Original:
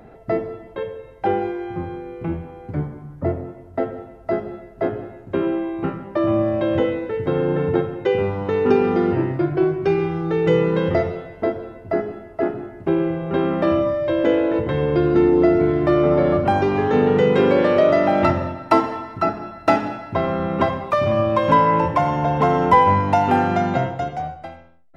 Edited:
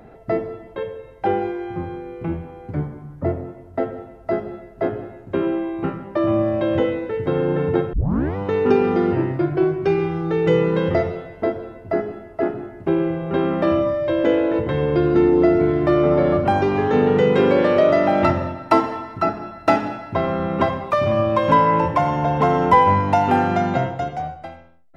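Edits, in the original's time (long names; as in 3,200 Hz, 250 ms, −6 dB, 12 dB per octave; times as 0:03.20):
0:07.93: tape start 0.43 s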